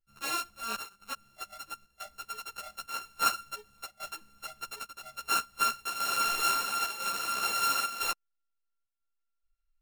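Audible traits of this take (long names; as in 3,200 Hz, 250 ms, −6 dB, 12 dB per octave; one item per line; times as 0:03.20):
a buzz of ramps at a fixed pitch in blocks of 32 samples
chopped level 1 Hz, depth 60%, duty 85%
a shimmering, thickened sound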